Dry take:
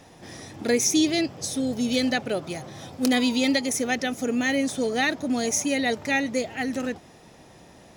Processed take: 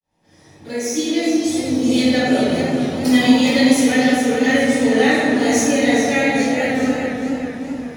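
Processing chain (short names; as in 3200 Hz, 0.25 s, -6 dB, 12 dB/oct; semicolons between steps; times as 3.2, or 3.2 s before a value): opening faded in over 1.87 s; 0.62–1.45 steep high-pass 200 Hz; reverb RT60 2.4 s, pre-delay 4 ms, DRR -15 dB; warbling echo 0.42 s, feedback 45%, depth 85 cents, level -8 dB; gain -10 dB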